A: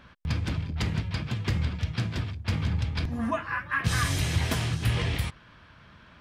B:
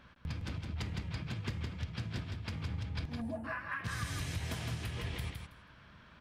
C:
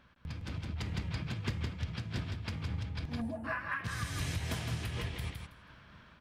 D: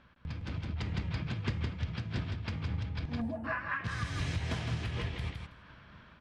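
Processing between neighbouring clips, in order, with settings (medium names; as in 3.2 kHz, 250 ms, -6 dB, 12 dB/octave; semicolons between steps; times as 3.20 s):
time-frequency box 3.21–3.44 s, 930–7100 Hz -24 dB; compression, threshold -30 dBFS, peak gain reduction 10 dB; on a send: feedback delay 162 ms, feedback 16%, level -5 dB; on the sum: trim -6 dB
level rider gain up to 4 dB; random flutter of the level, depth 50%
distance through air 92 m; trim +2 dB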